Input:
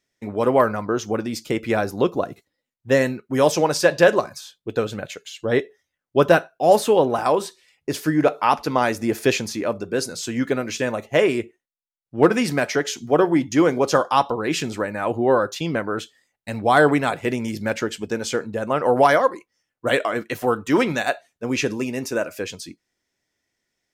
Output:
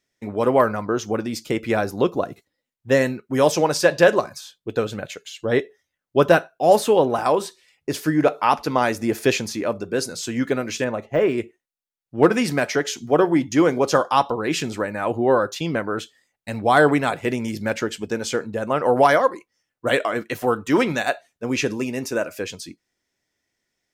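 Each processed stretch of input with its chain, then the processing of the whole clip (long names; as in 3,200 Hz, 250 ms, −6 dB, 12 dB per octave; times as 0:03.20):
0:10.84–0:11.38: low-pass filter 2,100 Hz 6 dB per octave + de-essing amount 95%
whole clip: no processing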